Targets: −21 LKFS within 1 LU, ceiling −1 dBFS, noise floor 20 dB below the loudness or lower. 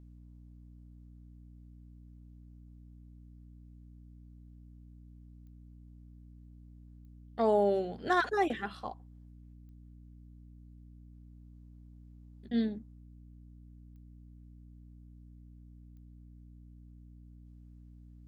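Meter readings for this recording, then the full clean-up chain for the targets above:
number of clicks 5; mains hum 60 Hz; hum harmonics up to 300 Hz; level of the hum −51 dBFS; integrated loudness −31.5 LKFS; sample peak −16.5 dBFS; target loudness −21.0 LKFS
→ click removal
mains-hum notches 60/120/180/240/300 Hz
level +10.5 dB

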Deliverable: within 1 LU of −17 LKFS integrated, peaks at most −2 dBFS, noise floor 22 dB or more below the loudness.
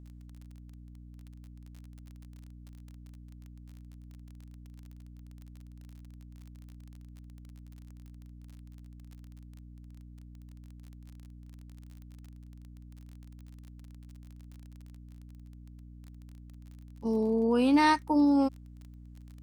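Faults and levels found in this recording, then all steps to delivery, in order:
crackle rate 30 per second; mains hum 60 Hz; hum harmonics up to 300 Hz; level of the hum −46 dBFS; integrated loudness −26.0 LKFS; sample peak −12.0 dBFS; target loudness −17.0 LKFS
→ click removal
mains-hum notches 60/120/180/240/300 Hz
level +9 dB

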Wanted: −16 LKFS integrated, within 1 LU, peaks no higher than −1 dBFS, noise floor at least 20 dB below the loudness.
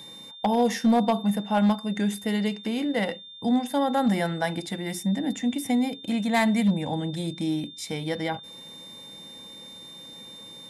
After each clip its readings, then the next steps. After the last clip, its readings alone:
share of clipped samples 0.6%; peaks flattened at −15.5 dBFS; interfering tone 3,600 Hz; level of the tone −42 dBFS; integrated loudness −26.0 LKFS; sample peak −15.5 dBFS; target loudness −16.0 LKFS
→ clipped peaks rebuilt −15.5 dBFS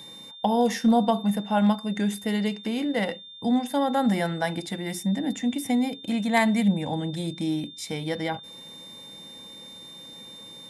share of clipped samples 0.0%; interfering tone 3,600 Hz; level of the tone −42 dBFS
→ notch filter 3,600 Hz, Q 30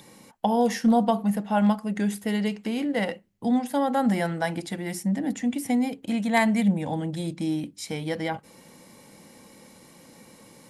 interfering tone none found; integrated loudness −26.0 LKFS; sample peak −7.5 dBFS; target loudness −16.0 LKFS
→ level +10 dB
brickwall limiter −1 dBFS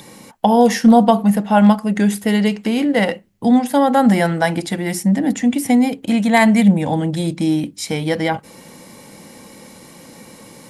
integrated loudness −16.0 LKFS; sample peak −1.0 dBFS; background noise floor −43 dBFS

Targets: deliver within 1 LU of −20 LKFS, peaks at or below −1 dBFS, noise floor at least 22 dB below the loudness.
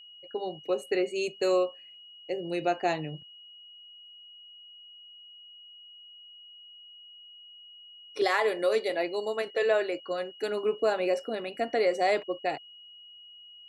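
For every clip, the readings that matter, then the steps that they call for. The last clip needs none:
interfering tone 2,900 Hz; level of the tone −48 dBFS; integrated loudness −29.5 LKFS; sample peak −13.0 dBFS; target loudness −20.0 LKFS
→ notch filter 2,900 Hz, Q 30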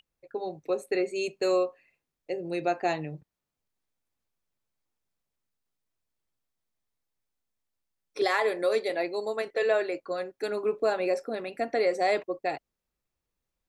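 interfering tone none found; integrated loudness −29.0 LKFS; sample peak −13.0 dBFS; target loudness −20.0 LKFS
→ level +9 dB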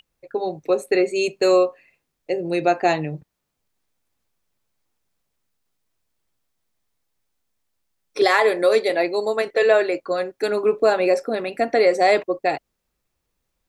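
integrated loudness −20.0 LKFS; sample peak −4.0 dBFS; background noise floor −77 dBFS

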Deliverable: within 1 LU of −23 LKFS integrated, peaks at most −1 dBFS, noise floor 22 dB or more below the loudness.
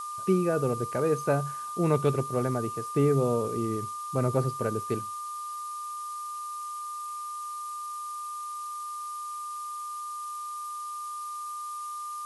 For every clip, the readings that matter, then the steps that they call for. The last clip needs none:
interfering tone 1,200 Hz; level of the tone −34 dBFS; background noise floor −37 dBFS; target noise floor −53 dBFS; integrated loudness −31.0 LKFS; sample peak −12.0 dBFS; target loudness −23.0 LKFS
→ notch filter 1,200 Hz, Q 30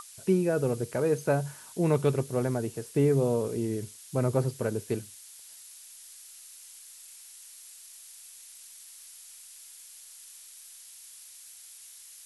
interfering tone none found; background noise floor −50 dBFS; target noise floor −51 dBFS
→ noise reduction from a noise print 6 dB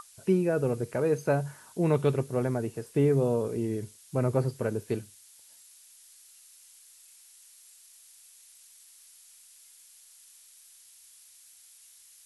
background noise floor −56 dBFS; integrated loudness −28.5 LKFS; sample peak −13.0 dBFS; target loudness −23.0 LKFS
→ level +5.5 dB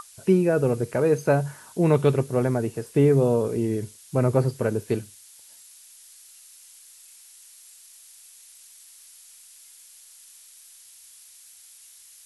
integrated loudness −23.0 LKFS; sample peak −7.5 dBFS; background noise floor −50 dBFS

